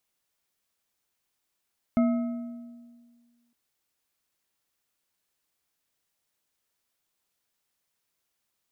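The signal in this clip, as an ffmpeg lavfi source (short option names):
-f lavfi -i "aevalsrc='0.126*pow(10,-3*t/1.78)*sin(2*PI*238*t)+0.0473*pow(10,-3*t/1.313)*sin(2*PI*656.2*t)+0.0178*pow(10,-3*t/1.073)*sin(2*PI*1286.2*t)+0.00668*pow(10,-3*t/0.923)*sin(2*PI*2126.1*t)':d=1.56:s=44100"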